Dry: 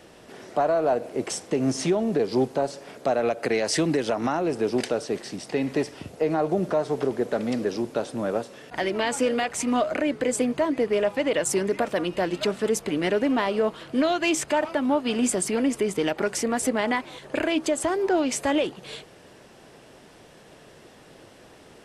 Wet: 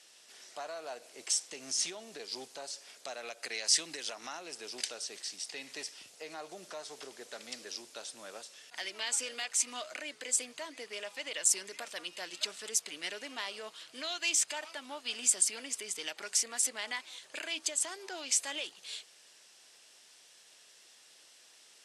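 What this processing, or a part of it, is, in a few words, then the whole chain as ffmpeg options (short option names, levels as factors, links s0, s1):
piezo pickup straight into a mixer: -af "lowpass=6200,aderivative,highshelf=f=3900:g=9"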